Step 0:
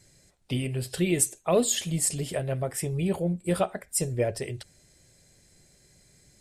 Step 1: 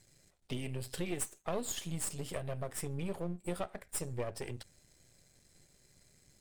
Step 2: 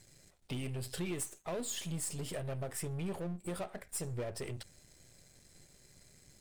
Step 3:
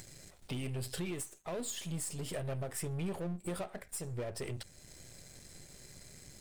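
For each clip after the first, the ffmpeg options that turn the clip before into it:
ffmpeg -i in.wav -af "aeval=exprs='if(lt(val(0),0),0.251*val(0),val(0))':channel_layout=same,acompressor=threshold=-32dB:ratio=2.5,volume=-3dB" out.wav
ffmpeg -i in.wav -af "aeval=exprs='(tanh(50.1*val(0)+0.45)-tanh(0.45))/50.1':channel_layout=same,volume=6dB" out.wav
ffmpeg -i in.wav -af "acompressor=mode=upward:threshold=-47dB:ratio=2.5,alimiter=level_in=9.5dB:limit=-24dB:level=0:latency=1:release=487,volume=-9.5dB,volume=2.5dB" out.wav

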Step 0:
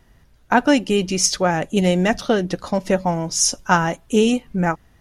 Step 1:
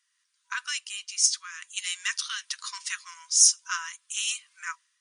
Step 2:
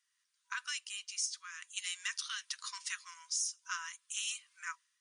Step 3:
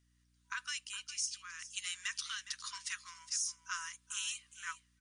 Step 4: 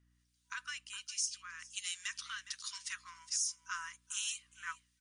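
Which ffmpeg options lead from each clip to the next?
ffmpeg -i in.wav -af "afftfilt=real='re*between(b*sr/4096,970,9900)':imag='im*between(b*sr/4096,970,9900)':win_size=4096:overlap=0.75,dynaudnorm=framelen=170:gausssize=5:maxgain=15dB,aderivative,volume=-3.5dB" out.wav
ffmpeg -i in.wav -af "acompressor=threshold=-26dB:ratio=12,volume=-6.5dB" out.wav
ffmpeg -i in.wav -af "aeval=exprs='val(0)+0.000282*(sin(2*PI*60*n/s)+sin(2*PI*2*60*n/s)/2+sin(2*PI*3*60*n/s)/3+sin(2*PI*4*60*n/s)/4+sin(2*PI*5*60*n/s)/5)':channel_layout=same,aecho=1:1:412:0.188,volume=-1dB" out.wav
ffmpeg -i in.wav -filter_complex "[0:a]acrossover=split=2400[link_01][link_02];[link_01]aeval=exprs='val(0)*(1-0.7/2+0.7/2*cos(2*PI*1.3*n/s))':channel_layout=same[link_03];[link_02]aeval=exprs='val(0)*(1-0.7/2-0.7/2*cos(2*PI*1.3*n/s))':channel_layout=same[link_04];[link_03][link_04]amix=inputs=2:normalize=0,volume=2dB" out.wav

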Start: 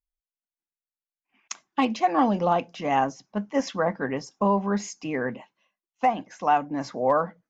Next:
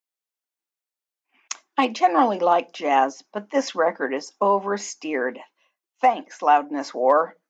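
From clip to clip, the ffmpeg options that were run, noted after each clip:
ffmpeg -i in.wav -af "highpass=frequency=290:width=0.5412,highpass=frequency=290:width=1.3066,volume=4.5dB" out.wav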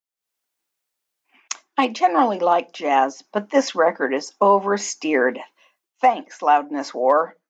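ffmpeg -i in.wav -af "dynaudnorm=framelen=160:gausssize=3:maxgain=14dB,volume=-4dB" out.wav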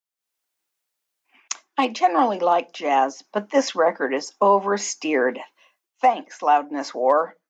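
ffmpeg -i in.wav -filter_complex "[0:a]lowshelf=frequency=450:gain=-3,acrossover=split=460|1200|2600[link_01][link_02][link_03][link_04];[link_03]alimiter=level_in=1dB:limit=-24dB:level=0:latency=1,volume=-1dB[link_05];[link_01][link_02][link_05][link_04]amix=inputs=4:normalize=0" out.wav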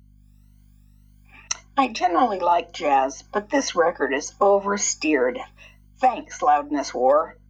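ffmpeg -i in.wav -af "afftfilt=real='re*pow(10,16/40*sin(2*PI*(1.9*log(max(b,1)*sr/1024/100)/log(2)-(1.9)*(pts-256)/sr)))':imag='im*pow(10,16/40*sin(2*PI*(1.9*log(max(b,1)*sr/1024/100)/log(2)-(1.9)*(pts-256)/sr)))':win_size=1024:overlap=0.75,acompressor=threshold=-38dB:ratio=1.5,aeval=exprs='val(0)+0.00141*(sin(2*PI*50*n/s)+sin(2*PI*2*50*n/s)/2+sin(2*PI*3*50*n/s)/3+sin(2*PI*4*50*n/s)/4+sin(2*PI*5*50*n/s)/5)':channel_layout=same,volume=6dB" out.wav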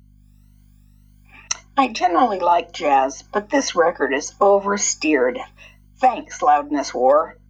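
ffmpeg -i in.wav -af "equalizer=frequency=69:width_type=o:width=0.92:gain=-2.5,volume=3dB" out.wav

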